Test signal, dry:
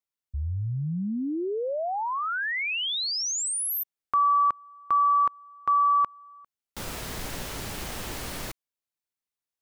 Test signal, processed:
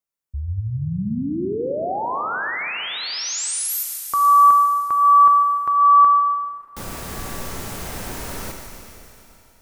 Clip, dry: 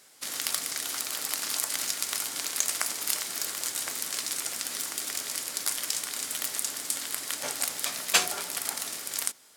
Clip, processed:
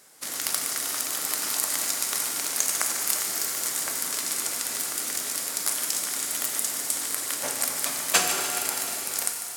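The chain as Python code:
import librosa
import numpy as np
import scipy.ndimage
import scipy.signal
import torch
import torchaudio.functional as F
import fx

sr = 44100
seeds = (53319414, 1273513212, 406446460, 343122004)

y = fx.peak_eq(x, sr, hz=3400.0, db=-5.5, octaves=1.5)
y = fx.echo_thinned(y, sr, ms=147, feedback_pct=67, hz=860.0, wet_db=-11.5)
y = fx.rev_schroeder(y, sr, rt60_s=3.1, comb_ms=33, drr_db=4.0)
y = y * librosa.db_to_amplitude(3.5)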